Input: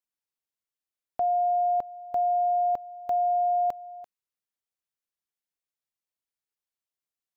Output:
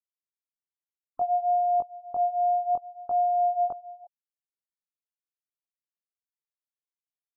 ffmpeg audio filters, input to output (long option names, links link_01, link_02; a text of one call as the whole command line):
ffmpeg -i in.wav -af "afftfilt=real='re*gte(hypot(re,im),0.01)':imag='im*gte(hypot(re,im),0.01)':win_size=1024:overlap=0.75,flanger=delay=18:depth=5.8:speed=0.6,volume=2dB" out.wav